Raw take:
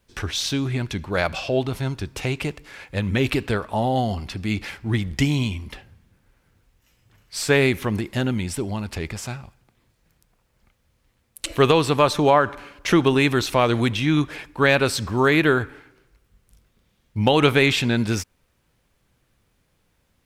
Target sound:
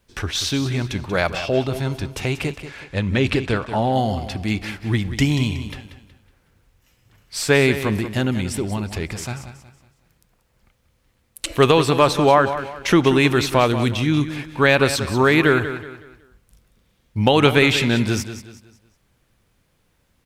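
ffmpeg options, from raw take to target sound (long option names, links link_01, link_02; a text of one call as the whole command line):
ffmpeg -i in.wav -filter_complex "[0:a]asettb=1/sr,asplit=3[link_01][link_02][link_03];[link_01]atrim=end=2.654[link_04];[link_02]atrim=start=2.65:end=3.93,asetpts=PTS-STARTPTS,afade=type=in:duration=0.004:curve=qsin,afade=type=out:start_time=1.276:duration=0.004:curve=qsin,lowpass=8000[link_05];[link_03]atrim=start=3.926[link_06];[link_04][link_05]acrossfade=duration=0.004:curve1=hsin:curve2=qsin[link_07];[link_07][link_06]acrossfade=duration=0.004:curve1=qsin:curve2=hsin,asettb=1/sr,asplit=3[link_08][link_09][link_10];[link_08]atrim=end=13.684[link_11];[link_09]atrim=start=13.68:end=14.37,asetpts=PTS-STARTPTS,afade=type=in:duration=0.004:curve=qsin,afade=type=out:start_time=0.686:duration=0.004:curve=qsin,equalizer=frequency=1100:width=0.39:gain=-5[link_12];[link_10]atrim=start=14.366[link_13];[link_11][link_12]acrossfade=duration=0.004:curve1=hsin:curve2=qsin[link_14];[link_14][link_13]acrossfade=duration=0.004:curve1=qsin:curve2=hsin,asplit=2[link_15][link_16];[link_16]aecho=0:1:185|370|555|740:0.266|0.0931|0.0326|0.0114[link_17];[link_15][link_17]amix=inputs=2:normalize=0,volume=2dB" out.wav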